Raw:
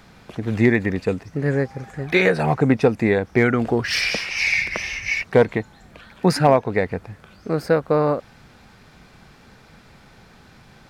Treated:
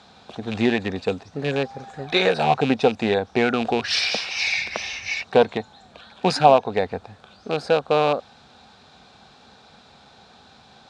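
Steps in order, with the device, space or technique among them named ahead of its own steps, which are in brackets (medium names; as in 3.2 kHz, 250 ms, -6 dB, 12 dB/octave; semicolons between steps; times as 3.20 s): car door speaker with a rattle (rattle on loud lows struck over -23 dBFS, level -17 dBFS; cabinet simulation 97–8200 Hz, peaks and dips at 120 Hz -9 dB, 170 Hz -6 dB, 320 Hz -6 dB, 760 Hz +7 dB, 2 kHz -8 dB, 3.8 kHz +10 dB); trim -1 dB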